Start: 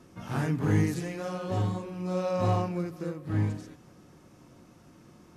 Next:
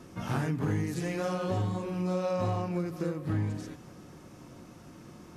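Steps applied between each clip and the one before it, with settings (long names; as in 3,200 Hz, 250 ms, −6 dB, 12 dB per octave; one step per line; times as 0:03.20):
downward compressor 6 to 1, threshold −32 dBFS, peak gain reduction 12 dB
level +5 dB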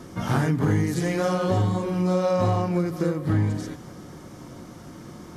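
notch filter 2,600 Hz, Q 8.5
level +8 dB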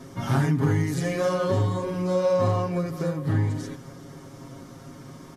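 comb filter 7.4 ms, depth 83%
level −3.5 dB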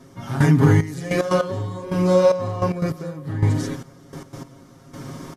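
gate pattern "....xxxx...x.x." 149 BPM −12 dB
level +8 dB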